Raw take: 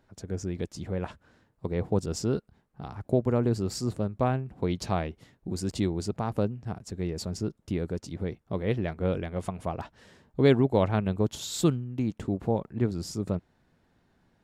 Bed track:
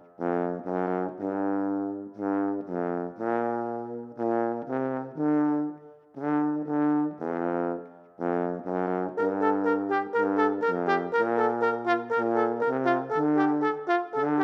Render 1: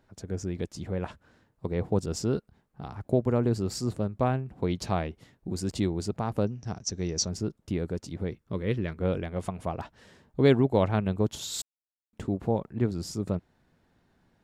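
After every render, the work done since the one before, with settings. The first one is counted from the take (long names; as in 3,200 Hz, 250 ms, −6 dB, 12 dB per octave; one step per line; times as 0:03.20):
0:06.47–0:07.29: low-pass with resonance 5,900 Hz, resonance Q 14
0:08.31–0:09.01: parametric band 730 Hz −12 dB 0.48 octaves
0:11.62–0:12.13: silence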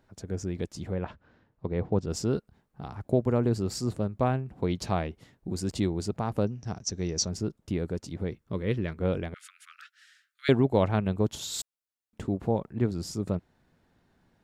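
0:00.94–0:02.10: high-frequency loss of the air 170 metres
0:09.34–0:10.49: Butterworth high-pass 1,300 Hz 96 dB per octave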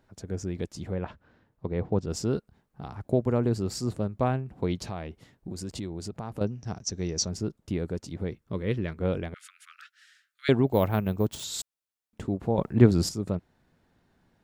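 0:04.81–0:06.41: downward compressor 3 to 1, threshold −33 dBFS
0:10.67–0:11.44: bad sample-rate conversion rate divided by 3×, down none, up hold
0:12.58–0:13.09: clip gain +9.5 dB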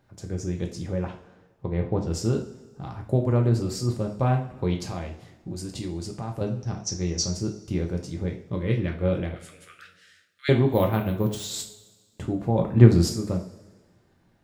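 coupled-rooms reverb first 0.38 s, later 1.5 s, from −16 dB, DRR 1.5 dB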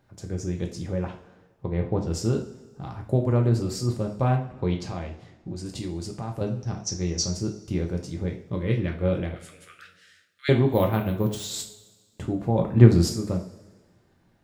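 0:04.36–0:05.66: high-frequency loss of the air 60 metres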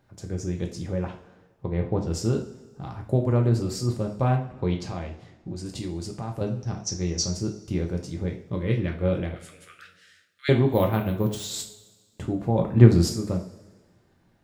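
no processing that can be heard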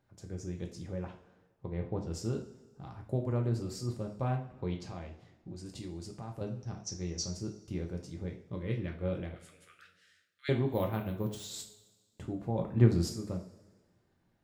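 level −10 dB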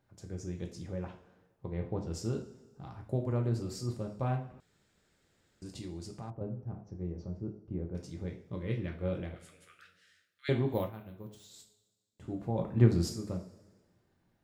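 0:04.60–0:05.62: fill with room tone
0:06.30–0:07.95: Bessel low-pass filter 740 Hz
0:10.77–0:12.34: duck −12 dB, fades 0.16 s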